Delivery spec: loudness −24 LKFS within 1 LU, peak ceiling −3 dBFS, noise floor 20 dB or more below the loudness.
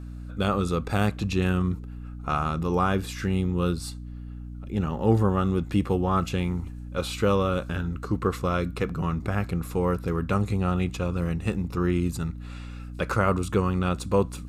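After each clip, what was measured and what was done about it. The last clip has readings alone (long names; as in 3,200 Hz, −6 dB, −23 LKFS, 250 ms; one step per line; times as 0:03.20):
mains hum 60 Hz; hum harmonics up to 300 Hz; level of the hum −35 dBFS; integrated loudness −26.5 LKFS; sample peak −9.0 dBFS; target loudness −24.0 LKFS
→ hum removal 60 Hz, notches 5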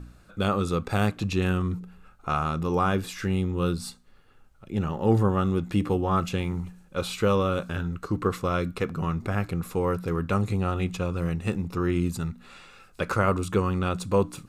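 mains hum none found; integrated loudness −27.0 LKFS; sample peak −9.5 dBFS; target loudness −24.0 LKFS
→ level +3 dB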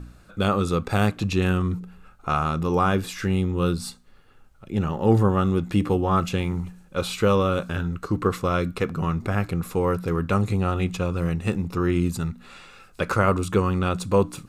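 integrated loudness −24.0 LKFS; sample peak −6.5 dBFS; background noise floor −52 dBFS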